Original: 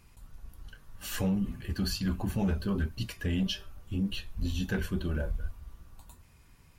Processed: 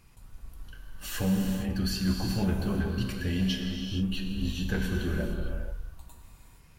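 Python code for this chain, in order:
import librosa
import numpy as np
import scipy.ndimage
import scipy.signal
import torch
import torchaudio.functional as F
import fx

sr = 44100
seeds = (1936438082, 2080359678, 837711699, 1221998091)

y = fx.rev_gated(x, sr, seeds[0], gate_ms=490, shape='flat', drr_db=1.0)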